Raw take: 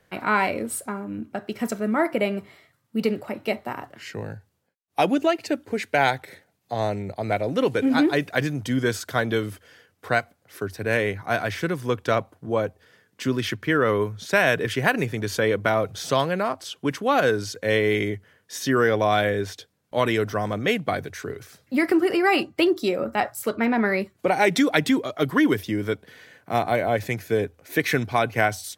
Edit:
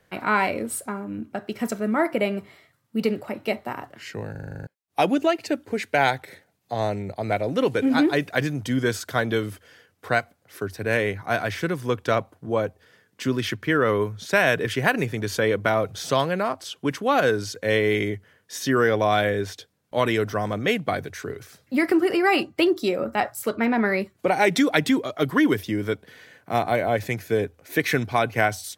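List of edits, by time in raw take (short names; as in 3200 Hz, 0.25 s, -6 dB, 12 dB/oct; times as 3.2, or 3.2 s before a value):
4.31 stutter in place 0.04 s, 9 plays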